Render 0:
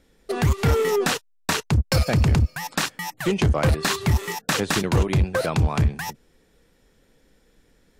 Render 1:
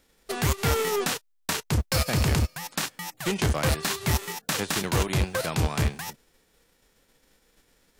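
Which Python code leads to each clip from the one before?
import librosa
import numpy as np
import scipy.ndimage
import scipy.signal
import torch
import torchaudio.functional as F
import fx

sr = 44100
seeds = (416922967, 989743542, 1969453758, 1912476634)

y = fx.envelope_flatten(x, sr, power=0.6)
y = F.gain(torch.from_numpy(y), -5.0).numpy()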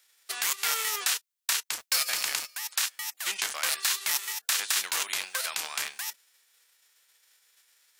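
y = scipy.signal.sosfilt(scipy.signal.butter(2, 1400.0, 'highpass', fs=sr, output='sos'), x)
y = fx.high_shelf(y, sr, hz=4200.0, db=5.0)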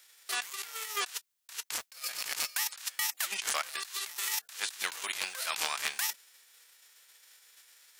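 y = fx.over_compress(x, sr, threshold_db=-35.0, ratio=-0.5)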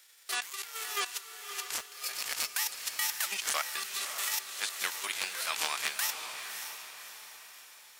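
y = fx.echo_diffused(x, sr, ms=588, feedback_pct=46, wet_db=-7.5)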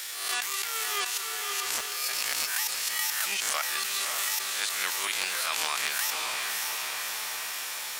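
y = fx.spec_swells(x, sr, rise_s=0.33)
y = fx.env_flatten(y, sr, amount_pct=70)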